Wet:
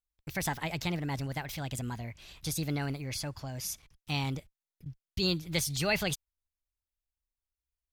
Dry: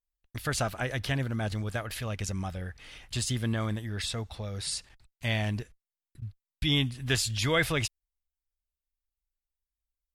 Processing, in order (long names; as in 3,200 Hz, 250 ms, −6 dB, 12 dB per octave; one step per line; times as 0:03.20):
speed change +28%
level −3 dB